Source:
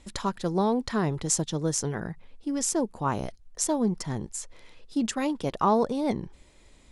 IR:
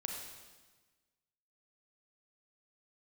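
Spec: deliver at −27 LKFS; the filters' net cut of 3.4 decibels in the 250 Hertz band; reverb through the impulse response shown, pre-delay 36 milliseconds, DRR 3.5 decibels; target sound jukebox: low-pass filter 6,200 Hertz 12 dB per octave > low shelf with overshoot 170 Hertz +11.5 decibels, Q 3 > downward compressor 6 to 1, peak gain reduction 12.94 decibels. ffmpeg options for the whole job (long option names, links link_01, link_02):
-filter_complex "[0:a]equalizer=frequency=250:width_type=o:gain=-6.5,asplit=2[link_01][link_02];[1:a]atrim=start_sample=2205,adelay=36[link_03];[link_02][link_03]afir=irnorm=-1:irlink=0,volume=-3.5dB[link_04];[link_01][link_04]amix=inputs=2:normalize=0,lowpass=6200,lowshelf=frequency=170:width_type=q:width=3:gain=11.5,acompressor=threshold=-27dB:ratio=6,volume=5.5dB"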